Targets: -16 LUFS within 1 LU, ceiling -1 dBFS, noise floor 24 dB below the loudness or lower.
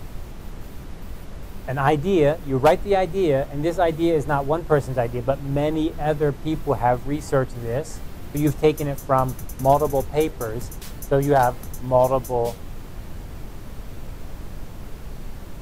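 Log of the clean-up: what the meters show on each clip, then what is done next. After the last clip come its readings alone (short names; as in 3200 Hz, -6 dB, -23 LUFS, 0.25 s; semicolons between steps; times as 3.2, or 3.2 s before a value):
noise floor -37 dBFS; noise floor target -46 dBFS; loudness -22.0 LUFS; peak -4.0 dBFS; loudness target -16.0 LUFS
-> noise print and reduce 9 dB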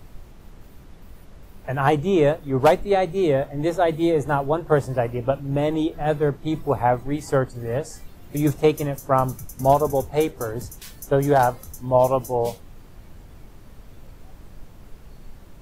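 noise floor -45 dBFS; noise floor target -46 dBFS
-> noise print and reduce 6 dB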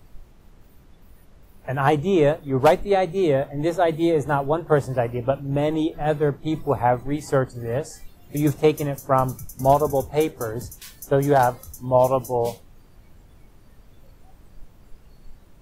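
noise floor -51 dBFS; loudness -22.0 LUFS; peak -4.0 dBFS; loudness target -16.0 LUFS
-> gain +6 dB; limiter -1 dBFS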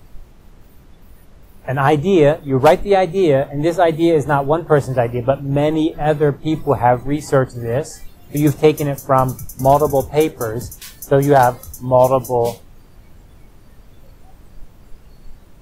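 loudness -16.0 LUFS; peak -1.0 dBFS; noise floor -45 dBFS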